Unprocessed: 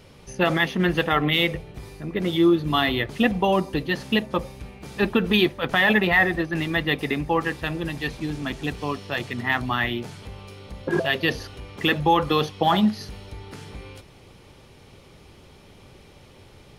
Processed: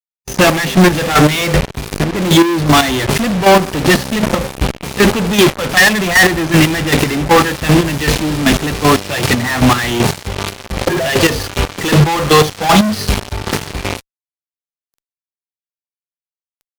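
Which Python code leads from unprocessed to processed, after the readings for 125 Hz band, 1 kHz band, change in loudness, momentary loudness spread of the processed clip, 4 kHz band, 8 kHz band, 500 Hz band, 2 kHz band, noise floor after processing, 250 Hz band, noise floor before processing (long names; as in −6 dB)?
+14.0 dB, +10.5 dB, +10.0 dB, 10 LU, +10.5 dB, +26.0 dB, +11.0 dB, +9.5 dB, below −85 dBFS, +10.5 dB, −50 dBFS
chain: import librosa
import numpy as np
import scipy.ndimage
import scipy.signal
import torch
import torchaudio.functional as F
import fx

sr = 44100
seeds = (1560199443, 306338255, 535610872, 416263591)

y = fx.fuzz(x, sr, gain_db=44.0, gate_db=-37.0)
y = fx.chopper(y, sr, hz=2.6, depth_pct=65, duty_pct=30)
y = fx.hpss(y, sr, part='harmonic', gain_db=4)
y = y * librosa.db_to_amplitude(5.0)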